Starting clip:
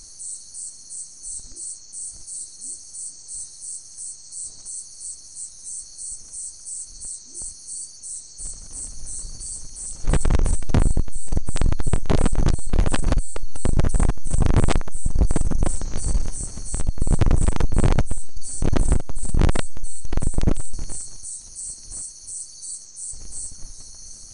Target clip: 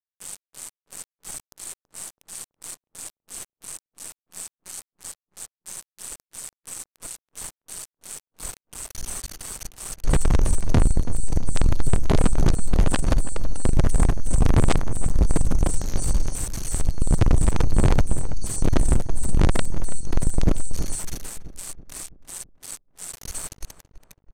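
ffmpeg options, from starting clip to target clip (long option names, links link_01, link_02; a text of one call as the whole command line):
ffmpeg -i in.wav -filter_complex "[0:a]aeval=exprs='val(0)*gte(abs(val(0)),0.0398)':channel_layout=same,asplit=2[link_01][link_02];[link_02]adelay=329,lowpass=frequency=1300:poles=1,volume=-12dB,asplit=2[link_03][link_04];[link_04]adelay=329,lowpass=frequency=1300:poles=1,volume=0.53,asplit=2[link_05][link_06];[link_06]adelay=329,lowpass=frequency=1300:poles=1,volume=0.53,asplit=2[link_07][link_08];[link_08]adelay=329,lowpass=frequency=1300:poles=1,volume=0.53,asplit=2[link_09][link_10];[link_10]adelay=329,lowpass=frequency=1300:poles=1,volume=0.53,asplit=2[link_11][link_12];[link_12]adelay=329,lowpass=frequency=1300:poles=1,volume=0.53[link_13];[link_01][link_03][link_05][link_07][link_09][link_11][link_13]amix=inputs=7:normalize=0,aresample=32000,aresample=44100" out.wav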